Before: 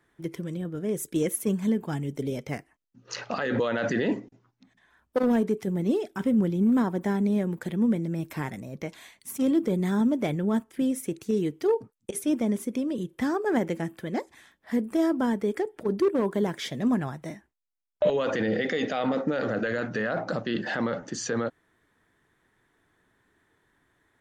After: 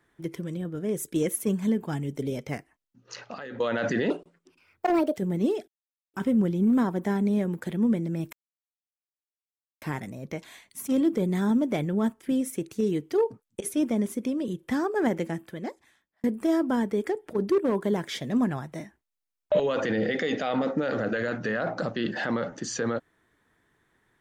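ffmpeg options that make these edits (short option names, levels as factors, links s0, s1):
-filter_complex "[0:a]asplit=7[s0][s1][s2][s3][s4][s5][s6];[s0]atrim=end=3.6,asetpts=PTS-STARTPTS,afade=t=out:st=2.54:d=1.06:silence=0.177828[s7];[s1]atrim=start=3.6:end=4.104,asetpts=PTS-STARTPTS,afade=t=in:d=0.004:c=hsin:silence=0.177828[s8];[s2]atrim=start=4.1:end=5.63,asetpts=PTS-STARTPTS,asetrate=62622,aresample=44100,atrim=end_sample=47516,asetpts=PTS-STARTPTS[s9];[s3]atrim=start=5.626:end=6.13,asetpts=PTS-STARTPTS,afade=t=out:st=0.5:d=0.004:c=hsin,apad=pad_dur=0.46[s10];[s4]atrim=start=6.13:end=8.32,asetpts=PTS-STARTPTS,afade=t=in:d=0.004:c=hsin,afade=t=out:st=2.186:d=0.004:c=hsin,apad=pad_dur=1.49[s11];[s5]atrim=start=8.32:end=14.74,asetpts=PTS-STARTPTS,afade=t=in:d=0.004:c=hsin,afade=t=out:st=5.42:d=1[s12];[s6]atrim=start=14.74,asetpts=PTS-STARTPTS,afade=t=in:d=0.004:c=hsin[s13];[s7][s8]concat=n=2:v=0:a=1[s14];[s14][s9]acrossfade=d=0.004:c1=hsin:c2=hsin[s15];[s10][s11][s12][s13]concat=n=4:v=0:a=1[s16];[s15][s16]acrossfade=d=0.004:c1=hsin:c2=hsin"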